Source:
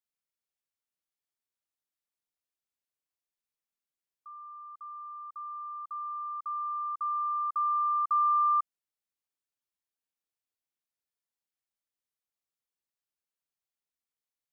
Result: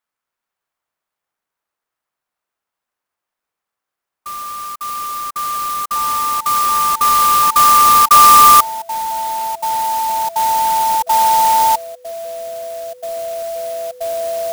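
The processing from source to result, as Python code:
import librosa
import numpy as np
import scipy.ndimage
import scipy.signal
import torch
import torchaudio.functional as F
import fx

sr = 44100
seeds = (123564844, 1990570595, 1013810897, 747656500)

y = fx.peak_eq(x, sr, hz=1200.0, db=14.5, octaves=2.2)
y = fx.echo_pitch(y, sr, ms=269, semitones=-5, count=3, db_per_echo=-6.0)
y = fx.clock_jitter(y, sr, seeds[0], jitter_ms=0.054)
y = y * librosa.db_to_amplitude(4.5)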